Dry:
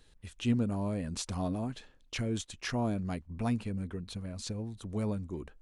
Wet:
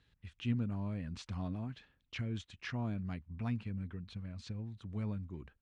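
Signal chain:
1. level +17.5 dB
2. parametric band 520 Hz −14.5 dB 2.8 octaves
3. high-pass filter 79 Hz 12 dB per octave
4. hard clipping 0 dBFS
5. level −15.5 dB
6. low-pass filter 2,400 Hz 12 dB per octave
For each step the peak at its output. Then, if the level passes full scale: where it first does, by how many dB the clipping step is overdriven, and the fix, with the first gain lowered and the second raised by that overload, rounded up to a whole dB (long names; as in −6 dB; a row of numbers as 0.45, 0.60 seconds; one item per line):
−1.0, −4.0, −4.0, −4.0, −19.5, −23.0 dBFS
no step passes full scale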